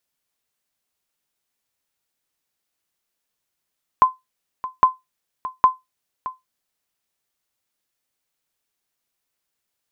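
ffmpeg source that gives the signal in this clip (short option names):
-f lavfi -i "aevalsrc='0.631*(sin(2*PI*1030*mod(t,0.81))*exp(-6.91*mod(t,0.81)/0.18)+0.168*sin(2*PI*1030*max(mod(t,0.81)-0.62,0))*exp(-6.91*max(mod(t,0.81)-0.62,0)/0.18))':d=2.43:s=44100"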